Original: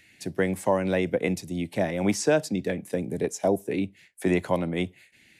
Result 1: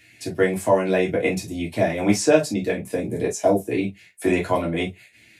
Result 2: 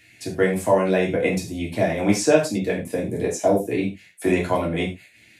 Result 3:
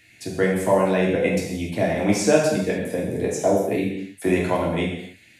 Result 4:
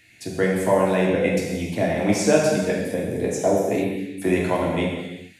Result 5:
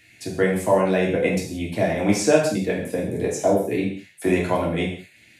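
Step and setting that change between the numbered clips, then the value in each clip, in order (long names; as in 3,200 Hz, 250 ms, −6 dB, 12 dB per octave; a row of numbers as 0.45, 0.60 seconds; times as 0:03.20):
reverb whose tail is shaped and stops, gate: 80, 130, 320, 490, 210 milliseconds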